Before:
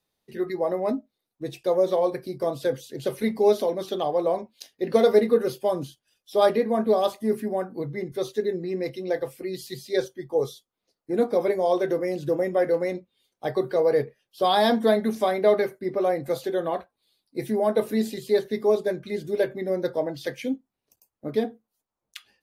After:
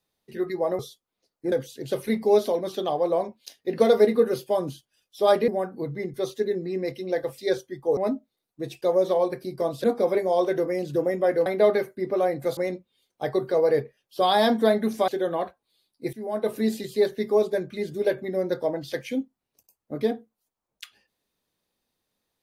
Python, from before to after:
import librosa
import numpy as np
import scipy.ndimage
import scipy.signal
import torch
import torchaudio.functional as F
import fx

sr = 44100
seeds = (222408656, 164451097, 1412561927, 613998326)

y = fx.edit(x, sr, fx.swap(start_s=0.79, length_s=1.87, other_s=10.44, other_length_s=0.73),
    fx.cut(start_s=6.62, length_s=0.84),
    fx.cut(start_s=9.36, length_s=0.49),
    fx.move(start_s=15.3, length_s=1.11, to_s=12.79),
    fx.fade_in_from(start_s=17.46, length_s=0.51, floor_db=-16.5), tone=tone)